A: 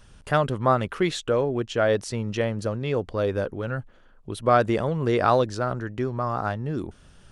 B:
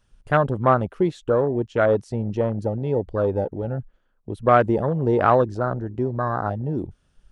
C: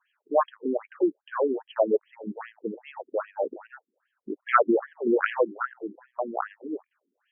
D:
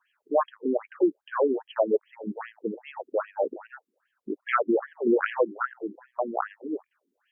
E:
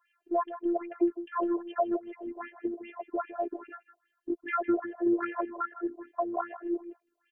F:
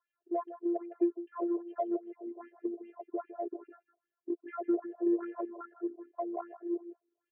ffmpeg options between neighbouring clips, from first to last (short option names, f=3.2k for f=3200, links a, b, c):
-af "afwtdn=0.0447,volume=3dB"
-af "equalizer=f=3k:t=o:w=2.7:g=6,afftfilt=real='re*between(b*sr/1024,290*pow(2400/290,0.5+0.5*sin(2*PI*2.5*pts/sr))/1.41,290*pow(2400/290,0.5+0.5*sin(2*PI*2.5*pts/sr))*1.41)':imag='im*between(b*sr/1024,290*pow(2400/290,0.5+0.5*sin(2*PI*2.5*pts/sr))/1.41,290*pow(2400/290,0.5+0.5*sin(2*PI*2.5*pts/sr))*1.41)':win_size=1024:overlap=0.75"
-af "alimiter=limit=-14dB:level=0:latency=1:release=310,volume=1.5dB"
-filter_complex "[0:a]acrossover=split=980|2100[a][b][c];[a]acompressor=threshold=-24dB:ratio=4[d];[b]acompressor=threshold=-34dB:ratio=4[e];[c]acompressor=threshold=-55dB:ratio=4[f];[d][e][f]amix=inputs=3:normalize=0,afftfilt=real='hypot(re,im)*cos(PI*b)':imag='0':win_size=512:overlap=0.75,asplit=2[g][h];[h]adelay=157.4,volume=-13dB,highshelf=f=4k:g=-3.54[i];[g][i]amix=inputs=2:normalize=0,volume=2dB"
-af "bandpass=f=440:t=q:w=1.8:csg=0,aeval=exprs='0.112*(cos(1*acos(clip(val(0)/0.112,-1,1)))-cos(1*PI/2))+0.000794*(cos(7*acos(clip(val(0)/0.112,-1,1)))-cos(7*PI/2))':c=same"